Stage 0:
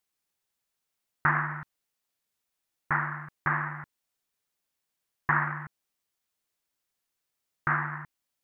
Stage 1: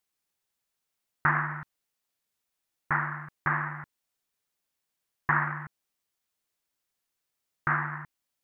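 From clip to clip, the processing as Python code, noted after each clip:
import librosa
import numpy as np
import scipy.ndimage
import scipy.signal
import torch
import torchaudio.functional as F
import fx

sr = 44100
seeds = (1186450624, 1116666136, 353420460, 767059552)

y = x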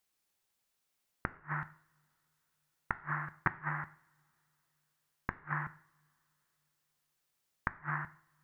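y = fx.gate_flip(x, sr, shuts_db=-16.0, range_db=-41)
y = fx.rev_double_slope(y, sr, seeds[0], early_s=0.51, late_s=3.3, knee_db=-27, drr_db=12.0)
y = F.gain(torch.from_numpy(y), 1.5).numpy()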